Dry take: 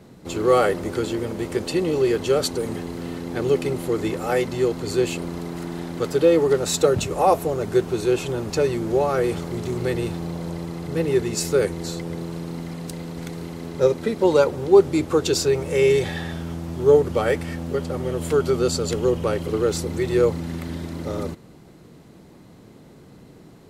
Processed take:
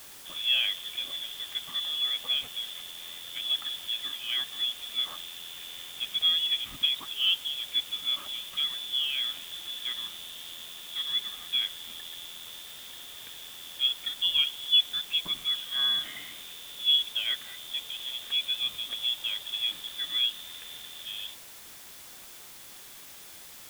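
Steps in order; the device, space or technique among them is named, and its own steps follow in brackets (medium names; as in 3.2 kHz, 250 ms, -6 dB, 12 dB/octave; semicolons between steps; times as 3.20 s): scrambled radio voice (band-pass 310–2800 Hz; frequency inversion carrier 3.8 kHz; white noise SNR 15 dB); trim -8.5 dB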